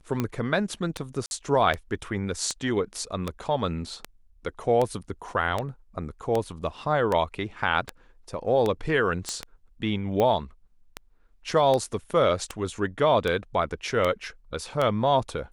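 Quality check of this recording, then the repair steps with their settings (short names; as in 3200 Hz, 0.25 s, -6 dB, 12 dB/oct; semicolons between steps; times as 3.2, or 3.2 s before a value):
tick 78 rpm -13 dBFS
1.26–1.31 gap 51 ms
9.29 pop -15 dBFS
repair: de-click; interpolate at 1.26, 51 ms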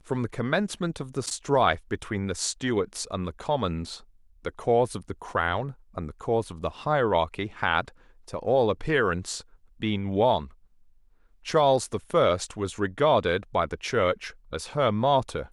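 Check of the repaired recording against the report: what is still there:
none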